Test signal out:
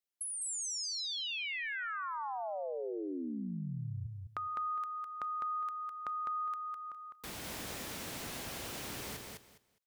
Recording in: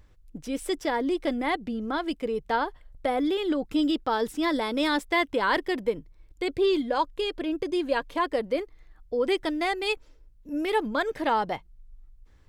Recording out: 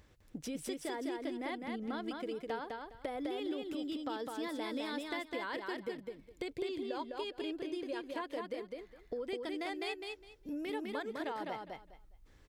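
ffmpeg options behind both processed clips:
ffmpeg -i in.wav -af "highpass=frequency=150:poles=1,equalizer=frequency=1100:width_type=o:width=1:gain=-3,acompressor=threshold=-40dB:ratio=6,aecho=1:1:205|410|615:0.668|0.134|0.0267,volume=1dB" out.wav

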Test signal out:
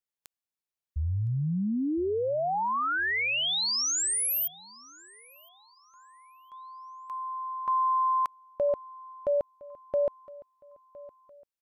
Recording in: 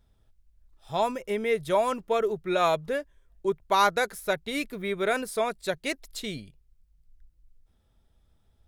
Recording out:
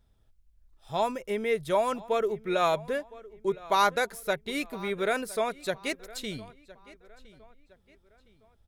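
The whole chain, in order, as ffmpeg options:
ffmpeg -i in.wav -filter_complex "[0:a]asplit=2[link_01][link_02];[link_02]adelay=1012,lowpass=frequency=4300:poles=1,volume=-20dB,asplit=2[link_03][link_04];[link_04]adelay=1012,lowpass=frequency=4300:poles=1,volume=0.4,asplit=2[link_05][link_06];[link_06]adelay=1012,lowpass=frequency=4300:poles=1,volume=0.4[link_07];[link_01][link_03][link_05][link_07]amix=inputs=4:normalize=0,volume=-1.5dB" out.wav

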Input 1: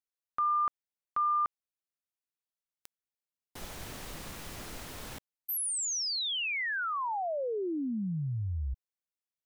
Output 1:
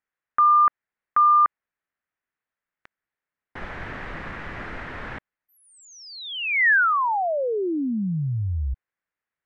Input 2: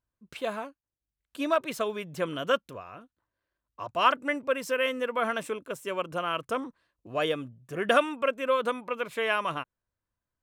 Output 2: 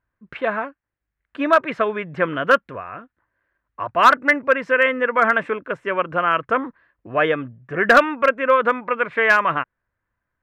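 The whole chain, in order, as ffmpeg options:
ffmpeg -i in.wav -filter_complex "[0:a]lowpass=frequency=1800:width_type=q:width=2.6,asplit=2[link_01][link_02];[link_02]aeval=exprs='0.188*(abs(mod(val(0)/0.188+3,4)-2)-1)':channel_layout=same,volume=-5dB[link_03];[link_01][link_03]amix=inputs=2:normalize=0,volume=4dB" out.wav

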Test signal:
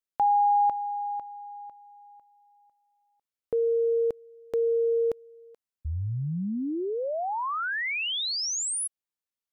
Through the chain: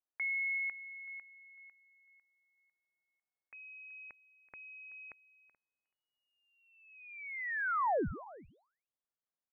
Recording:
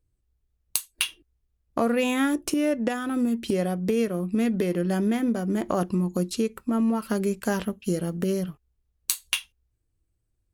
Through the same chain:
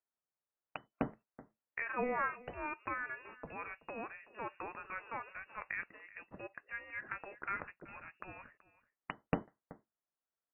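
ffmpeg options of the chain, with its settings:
ffmpeg -i in.wav -filter_complex "[0:a]highpass=980,aderivative,acompressor=threshold=-34dB:ratio=6:attack=87:release=138:knee=6:detection=peak,asplit=2[link_01][link_02];[link_02]adelay=379,volume=-18dB,highshelf=frequency=4000:gain=-8.53[link_03];[link_01][link_03]amix=inputs=2:normalize=0,asoftclip=type=hard:threshold=-17dB,lowpass=frequency=2600:width_type=q:width=0.5098,lowpass=frequency=2600:width_type=q:width=0.6013,lowpass=frequency=2600:width_type=q:width=0.9,lowpass=frequency=2600:width_type=q:width=2.563,afreqshift=-3000,volume=10dB" out.wav

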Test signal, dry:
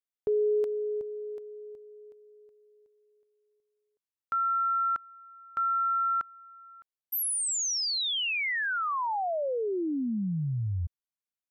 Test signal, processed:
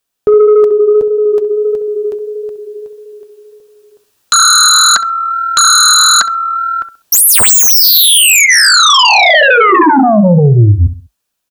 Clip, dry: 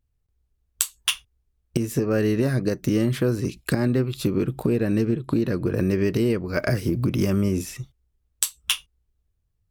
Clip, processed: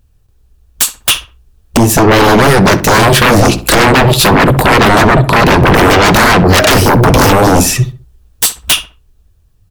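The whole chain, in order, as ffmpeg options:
ffmpeg -i in.wav -filter_complex "[0:a]bandreject=frequency=2100:width=7.3,dynaudnorm=framelen=250:gausssize=13:maxgain=14dB,flanger=delay=1.3:depth=9.1:regen=-53:speed=1.6:shape=triangular,aeval=exprs='0.562*sin(PI/2*10*val(0)/0.562)':channel_layout=same,asplit=2[link_01][link_02];[link_02]adelay=66,lowpass=frequency=1900:poles=1,volume=-12.5dB,asplit=2[link_03][link_04];[link_04]adelay=66,lowpass=frequency=1900:poles=1,volume=0.34,asplit=2[link_05][link_06];[link_06]adelay=66,lowpass=frequency=1900:poles=1,volume=0.34[link_07];[link_01][link_03][link_05][link_07]amix=inputs=4:normalize=0,volume=1.5dB" out.wav

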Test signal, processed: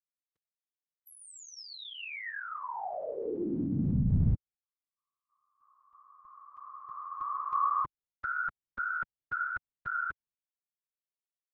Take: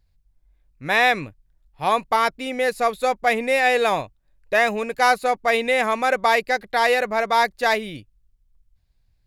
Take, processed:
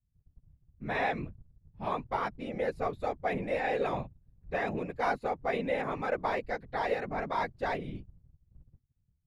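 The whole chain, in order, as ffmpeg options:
ffmpeg -i in.wav -af "agate=range=-33dB:threshold=-52dB:ratio=3:detection=peak,aemphasis=mode=reproduction:type=riaa,afftfilt=real='hypot(re,im)*cos(2*PI*random(0))':imag='hypot(re,im)*sin(2*PI*random(1))':win_size=512:overlap=0.75,volume=-7.5dB" out.wav

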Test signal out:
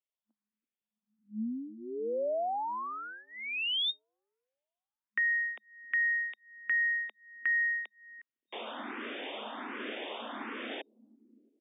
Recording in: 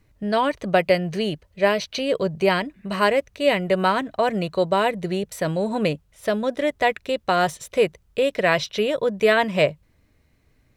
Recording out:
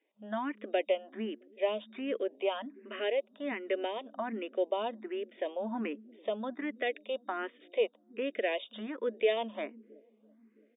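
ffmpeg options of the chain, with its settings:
ffmpeg -i in.wav -filter_complex "[0:a]afftfilt=real='re*between(b*sr/4096,210,3700)':imag='im*between(b*sr/4096,210,3700)':win_size=4096:overlap=0.75,acrossover=split=300|630|2100[link_01][link_02][link_03][link_04];[link_01]aecho=1:1:333|666|999|1332|1665|1998|2331:0.251|0.148|0.0874|0.0516|0.0304|0.018|0.0106[link_05];[link_03]acompressor=threshold=-29dB:ratio=8[link_06];[link_05][link_02][link_06][link_04]amix=inputs=4:normalize=0,asplit=2[link_07][link_08];[link_08]afreqshift=1.3[link_09];[link_07][link_09]amix=inputs=2:normalize=1,volume=-8dB" out.wav

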